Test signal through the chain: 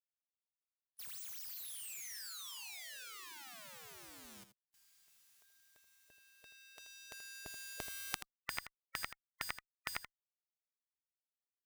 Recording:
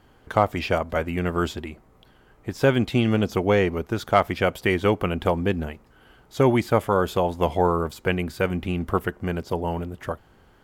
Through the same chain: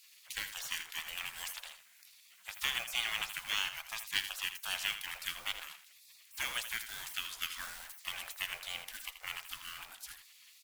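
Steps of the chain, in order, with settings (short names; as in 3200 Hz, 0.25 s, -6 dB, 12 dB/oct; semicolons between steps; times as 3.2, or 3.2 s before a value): G.711 law mismatch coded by mu; spectral gate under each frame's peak -25 dB weak; passive tone stack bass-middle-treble 5-5-5; on a send: echo 81 ms -11 dB; on the sum: gain +12 dB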